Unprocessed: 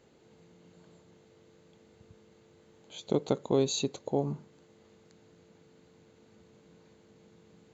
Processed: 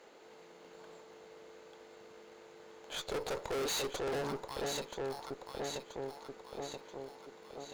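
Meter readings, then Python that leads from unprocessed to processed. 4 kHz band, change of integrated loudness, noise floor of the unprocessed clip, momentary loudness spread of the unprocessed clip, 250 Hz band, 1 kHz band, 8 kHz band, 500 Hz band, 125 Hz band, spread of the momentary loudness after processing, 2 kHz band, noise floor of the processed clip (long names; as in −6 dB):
0.0 dB, −8.0 dB, −62 dBFS, 17 LU, −10.0 dB, +1.5 dB, can't be measured, −4.0 dB, −11.0 dB, 19 LU, +8.5 dB, −57 dBFS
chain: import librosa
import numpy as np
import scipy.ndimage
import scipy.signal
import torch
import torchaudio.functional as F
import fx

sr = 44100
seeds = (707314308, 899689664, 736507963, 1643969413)

p1 = fx.sample_hold(x, sr, seeds[0], rate_hz=4800.0, jitter_pct=0)
p2 = x + (p1 * 10.0 ** (-8.0 / 20.0))
p3 = scipy.signal.sosfilt(scipy.signal.butter(2, 580.0, 'highpass', fs=sr, output='sos'), p2)
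p4 = fx.high_shelf(p3, sr, hz=5800.0, db=-7.0)
p5 = p4 + fx.echo_alternate(p4, sr, ms=490, hz=1000.0, feedback_pct=72, wet_db=-7.0, dry=0)
p6 = fx.tube_stage(p5, sr, drive_db=45.0, bias=0.65)
y = p6 * 10.0 ** (11.5 / 20.0)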